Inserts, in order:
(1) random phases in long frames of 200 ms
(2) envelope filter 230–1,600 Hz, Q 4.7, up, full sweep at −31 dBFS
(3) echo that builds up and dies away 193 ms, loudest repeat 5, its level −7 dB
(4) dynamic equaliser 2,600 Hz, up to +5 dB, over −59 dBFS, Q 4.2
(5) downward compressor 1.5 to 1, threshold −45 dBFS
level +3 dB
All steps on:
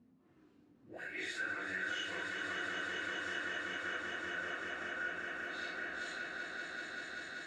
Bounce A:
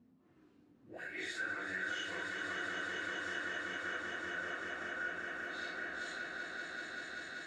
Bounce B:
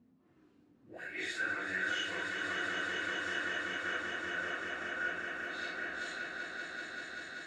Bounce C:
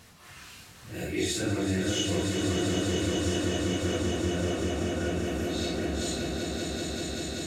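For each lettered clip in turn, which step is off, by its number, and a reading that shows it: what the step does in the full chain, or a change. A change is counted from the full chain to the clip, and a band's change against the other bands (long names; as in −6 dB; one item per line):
4, 4 kHz band −1.5 dB
5, change in momentary loudness spread +2 LU
2, 2 kHz band −21.0 dB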